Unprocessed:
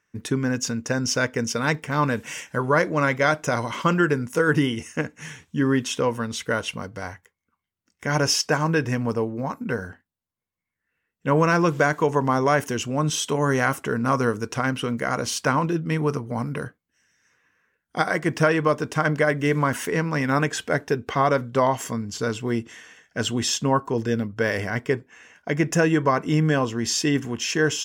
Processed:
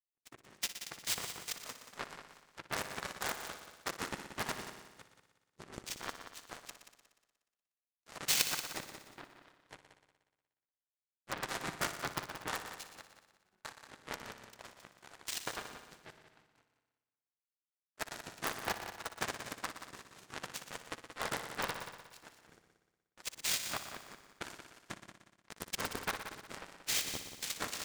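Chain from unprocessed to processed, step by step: tone controls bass -14 dB, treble +10 dB; noise vocoder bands 3; in parallel at -3 dB: wrapped overs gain 9.5 dB; 13.02–13.65 on the sum: octave resonator F#, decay 0.11 s; power-law curve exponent 3; multi-head echo 60 ms, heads all three, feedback 48%, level -13 dB; 11.38–12.32 three-band expander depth 70%; gain -6 dB

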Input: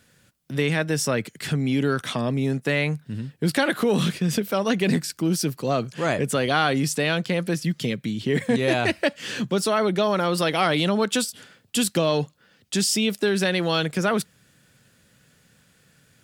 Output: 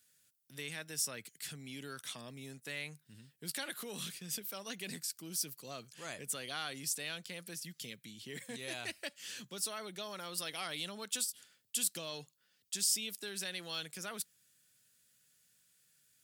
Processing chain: pre-emphasis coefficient 0.9; gain -6.5 dB

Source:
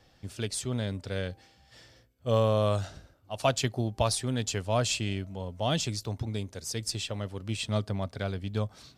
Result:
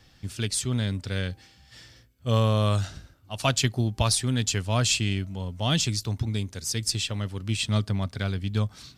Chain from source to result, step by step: bell 590 Hz -9.5 dB 1.5 oct; gain +6.5 dB

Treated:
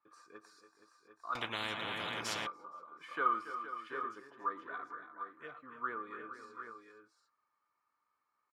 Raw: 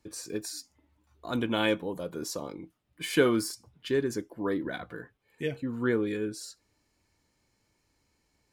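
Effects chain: de-esser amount 70%; band-pass 1200 Hz, Q 13; tapped delay 0.115/0.282/0.303/0.468/0.726/0.752 s -18/-12.5/-15.5/-12.5/-16/-9 dB; 1.35–2.47 spectral compressor 10:1; gain +10 dB

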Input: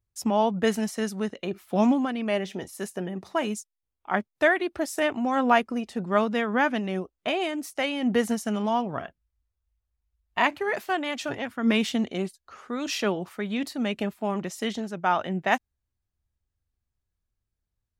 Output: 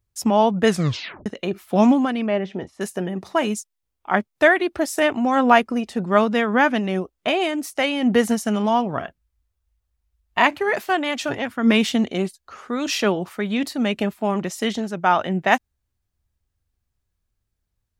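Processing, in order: 0.68 tape stop 0.58 s; 2.26–2.81 tape spacing loss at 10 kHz 26 dB; gain +6 dB

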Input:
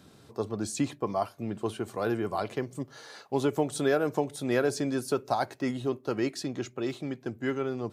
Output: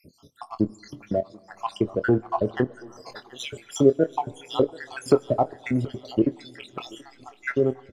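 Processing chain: random spectral dropouts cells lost 74%; treble ducked by the level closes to 730 Hz, closed at -30 dBFS; AGC gain up to 3.5 dB; in parallel at -8.5 dB: backlash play -38 dBFS; on the sum: doubler 24 ms -12 dB; thinning echo 0.73 s, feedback 52%, high-pass 510 Hz, level -18.5 dB; on a send at -24 dB: reverb RT60 3.1 s, pre-delay 48 ms; on the sum: gain +5.5 dB

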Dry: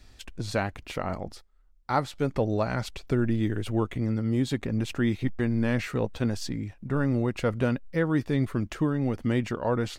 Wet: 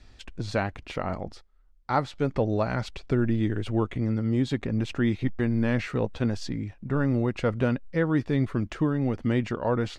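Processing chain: air absorption 72 m; gain +1 dB

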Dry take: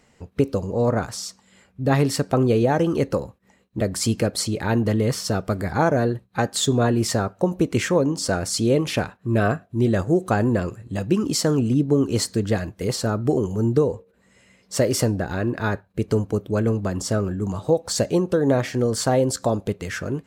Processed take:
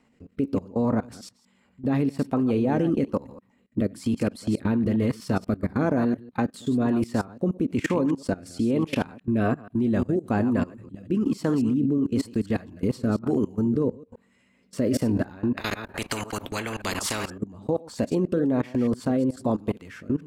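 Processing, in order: reverse delay 0.121 s, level -10.5 dB; fifteen-band EQ 250 Hz +12 dB, 1000 Hz +7 dB, 2500 Hz +4 dB, 6300 Hz -5 dB; rotary speaker horn 1.1 Hz; level quantiser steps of 21 dB; 15.57–17.38 spectral compressor 4:1; gain -1 dB

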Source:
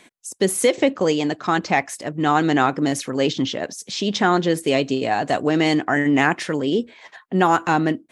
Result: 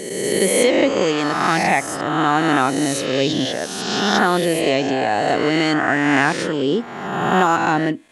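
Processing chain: spectral swells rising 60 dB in 1.51 s; 1.18–1.64 high shelf 7900 Hz +9 dB; gain -1.5 dB

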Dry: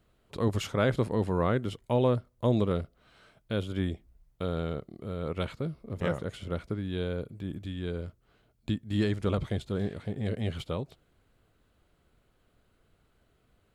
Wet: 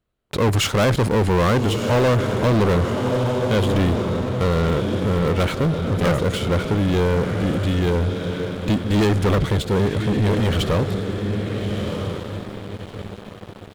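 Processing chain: diffused feedback echo 1.311 s, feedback 41%, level -10.5 dB; sample leveller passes 5

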